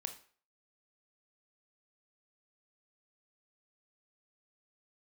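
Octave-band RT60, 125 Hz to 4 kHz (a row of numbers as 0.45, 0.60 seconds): 0.35, 0.40, 0.45, 0.45, 0.45, 0.40 seconds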